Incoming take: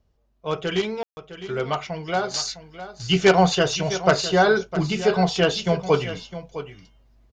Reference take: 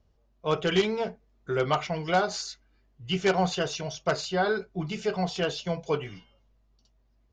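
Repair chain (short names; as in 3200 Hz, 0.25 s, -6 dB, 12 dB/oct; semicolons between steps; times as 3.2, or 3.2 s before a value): room tone fill 1.03–1.17; inverse comb 0.658 s -13 dB; gain 0 dB, from 2.34 s -8.5 dB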